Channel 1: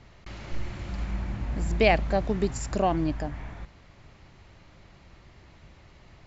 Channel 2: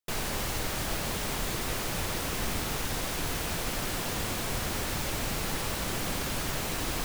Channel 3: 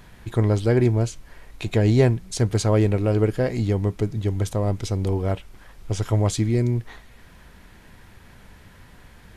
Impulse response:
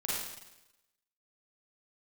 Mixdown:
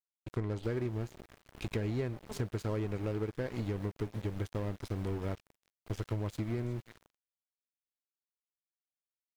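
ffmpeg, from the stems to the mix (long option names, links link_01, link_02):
-filter_complex "[0:a]volume=-11dB[link_01];[1:a]adelay=550,volume=-17.5dB,asplit=2[link_02][link_03];[link_03]volume=-9dB[link_04];[2:a]equalizer=frequency=740:width_type=o:width=0.7:gain=-7.5,volume=-3.5dB,asplit=3[link_05][link_06][link_07];[link_06]volume=-21dB[link_08];[link_07]apad=whole_len=276302[link_09];[link_01][link_09]sidechaincompress=threshold=-32dB:ratio=8:attack=8.4:release=167[link_10];[link_04][link_08]amix=inputs=2:normalize=0,aecho=0:1:364|728|1092|1456|1820|2184:1|0.41|0.168|0.0689|0.0283|0.0116[link_11];[link_10][link_02][link_05][link_11]amix=inputs=4:normalize=0,bass=frequency=250:gain=-3,treble=frequency=4000:gain=-9,aeval=exprs='sgn(val(0))*max(abs(val(0))-0.0141,0)':channel_layout=same,acompressor=threshold=-31dB:ratio=6"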